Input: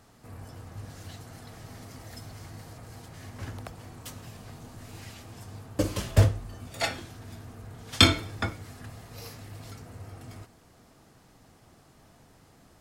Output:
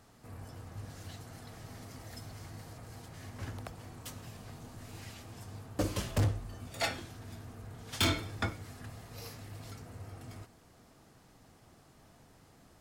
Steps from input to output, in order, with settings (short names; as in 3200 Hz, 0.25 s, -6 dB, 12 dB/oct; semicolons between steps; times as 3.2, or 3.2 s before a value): overloaded stage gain 21.5 dB; gain -3 dB